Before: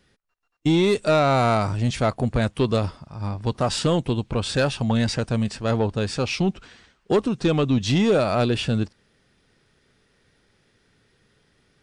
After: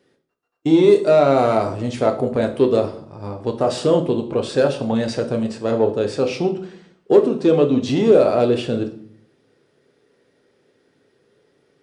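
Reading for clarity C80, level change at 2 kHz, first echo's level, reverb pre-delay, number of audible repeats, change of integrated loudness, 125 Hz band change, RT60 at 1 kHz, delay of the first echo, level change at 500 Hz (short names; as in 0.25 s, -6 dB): 15.0 dB, -2.5 dB, none, 7 ms, none, +4.5 dB, -4.0 dB, 0.60 s, none, +7.5 dB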